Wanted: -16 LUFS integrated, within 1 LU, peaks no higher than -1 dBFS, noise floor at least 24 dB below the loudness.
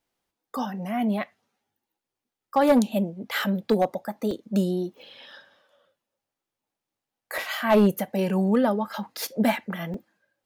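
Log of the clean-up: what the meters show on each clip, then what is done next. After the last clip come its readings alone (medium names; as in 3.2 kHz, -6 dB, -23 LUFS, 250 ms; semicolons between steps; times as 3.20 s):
clipped samples 0.3%; clipping level -12.5 dBFS; dropouts 4; longest dropout 2.2 ms; loudness -25.5 LUFS; peak level -12.5 dBFS; loudness target -16.0 LUFS
-> clip repair -12.5 dBFS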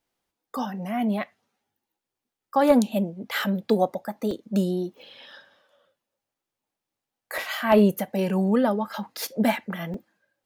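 clipped samples 0.0%; dropouts 4; longest dropout 2.2 ms
-> interpolate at 4.31/7.38/9.17/9.94 s, 2.2 ms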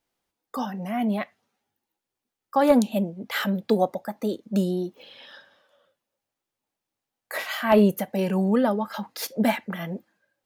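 dropouts 0; loudness -25.0 LUFS; peak level -7.0 dBFS; loudness target -16.0 LUFS
-> trim +9 dB; peak limiter -1 dBFS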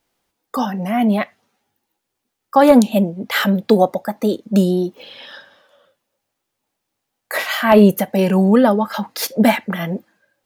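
loudness -16.5 LUFS; peak level -1.0 dBFS; noise floor -78 dBFS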